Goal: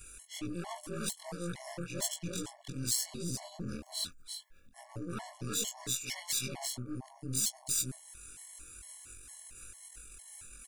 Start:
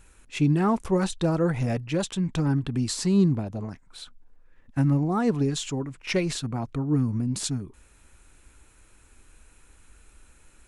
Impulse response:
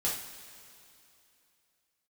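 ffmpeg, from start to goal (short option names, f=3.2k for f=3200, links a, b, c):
-af "afftfilt=real='re':imag='-im':win_size=2048:overlap=0.75,aecho=1:1:338:0.473,areverse,acompressor=threshold=-37dB:ratio=8,areverse,aeval=exprs='0.0501*(cos(1*acos(clip(val(0)/0.0501,-1,1)))-cos(1*PI/2))+0.00501*(cos(8*acos(clip(val(0)/0.0501,-1,1)))-cos(8*PI/2))':c=same,acompressor=mode=upward:threshold=-50dB:ratio=2.5,crystalizer=i=5.5:c=0,afftfilt=real='re*gt(sin(2*PI*2.2*pts/sr)*(1-2*mod(floor(b*sr/1024/570),2)),0)':imag='im*gt(sin(2*PI*2.2*pts/sr)*(1-2*mod(floor(b*sr/1024/570),2)),0)':win_size=1024:overlap=0.75"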